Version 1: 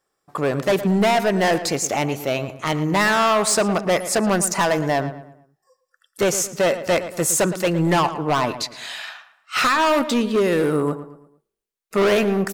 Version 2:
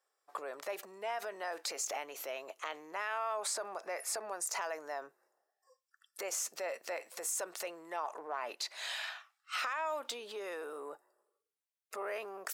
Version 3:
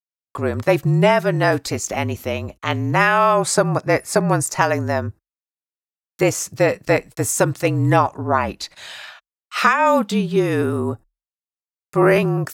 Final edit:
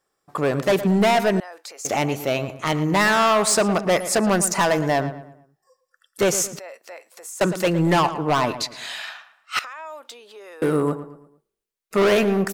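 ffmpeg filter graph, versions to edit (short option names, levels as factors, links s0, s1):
-filter_complex "[1:a]asplit=3[s0][s1][s2];[0:a]asplit=4[s3][s4][s5][s6];[s3]atrim=end=1.402[s7];[s0]atrim=start=1.398:end=1.852[s8];[s4]atrim=start=1.848:end=6.592[s9];[s1]atrim=start=6.588:end=7.412[s10];[s5]atrim=start=7.408:end=9.592[s11];[s2]atrim=start=9.588:end=10.622[s12];[s6]atrim=start=10.618[s13];[s7][s8]acrossfade=d=0.004:c1=hsin:c2=hsin[s14];[s14][s9]acrossfade=d=0.004:c1=hsin:c2=hsin[s15];[s15][s10]acrossfade=d=0.004:c1=hsin:c2=hsin[s16];[s16][s11]acrossfade=d=0.004:c1=hsin:c2=hsin[s17];[s17][s12]acrossfade=d=0.004:c1=hsin:c2=hsin[s18];[s18][s13]acrossfade=d=0.004:c1=hsin:c2=hsin"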